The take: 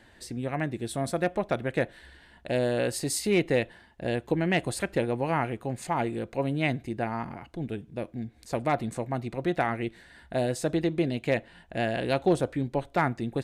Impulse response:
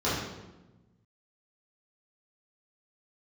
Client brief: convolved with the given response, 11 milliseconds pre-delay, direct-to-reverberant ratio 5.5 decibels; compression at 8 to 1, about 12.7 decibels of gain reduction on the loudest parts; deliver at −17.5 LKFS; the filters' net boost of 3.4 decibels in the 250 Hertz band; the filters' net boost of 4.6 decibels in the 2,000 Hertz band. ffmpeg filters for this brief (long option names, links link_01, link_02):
-filter_complex "[0:a]equalizer=frequency=250:width_type=o:gain=4.5,equalizer=frequency=2000:width_type=o:gain=5.5,acompressor=threshold=-30dB:ratio=8,asplit=2[link_01][link_02];[1:a]atrim=start_sample=2205,adelay=11[link_03];[link_02][link_03]afir=irnorm=-1:irlink=0,volume=-18dB[link_04];[link_01][link_04]amix=inputs=2:normalize=0,volume=16dB"